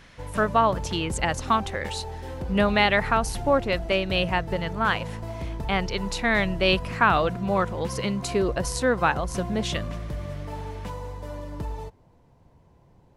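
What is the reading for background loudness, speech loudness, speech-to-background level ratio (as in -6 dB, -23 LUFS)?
-34.5 LUFS, -25.0 LUFS, 9.5 dB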